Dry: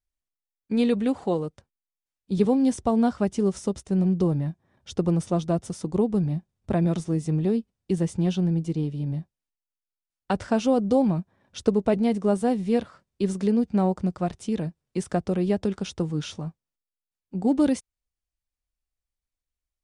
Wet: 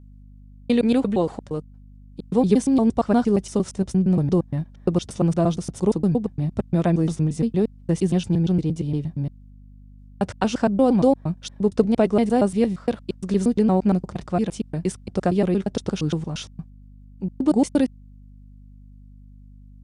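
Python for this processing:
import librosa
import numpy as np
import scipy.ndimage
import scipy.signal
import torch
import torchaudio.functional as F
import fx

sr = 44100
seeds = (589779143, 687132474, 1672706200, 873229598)

y = fx.block_reorder(x, sr, ms=116.0, group=2)
y = fx.add_hum(y, sr, base_hz=50, snr_db=23)
y = y * librosa.db_to_amplitude(3.5)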